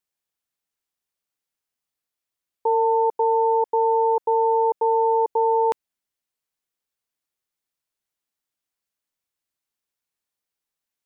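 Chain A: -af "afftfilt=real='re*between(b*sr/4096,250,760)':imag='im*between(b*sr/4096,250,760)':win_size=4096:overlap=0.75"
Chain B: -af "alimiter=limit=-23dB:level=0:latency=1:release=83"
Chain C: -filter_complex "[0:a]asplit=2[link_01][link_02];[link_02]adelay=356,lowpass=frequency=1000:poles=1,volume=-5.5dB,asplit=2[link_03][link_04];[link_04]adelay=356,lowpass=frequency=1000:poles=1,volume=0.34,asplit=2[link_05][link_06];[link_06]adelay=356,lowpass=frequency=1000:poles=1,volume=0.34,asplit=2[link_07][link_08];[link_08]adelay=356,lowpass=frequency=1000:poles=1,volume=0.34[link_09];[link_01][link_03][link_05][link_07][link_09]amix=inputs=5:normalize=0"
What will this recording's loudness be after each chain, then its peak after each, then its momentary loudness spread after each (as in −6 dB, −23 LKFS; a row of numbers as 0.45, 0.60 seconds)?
−24.0, −30.5, −19.0 LKFS; −18.0, −23.0, −11.0 dBFS; 4, 4, 11 LU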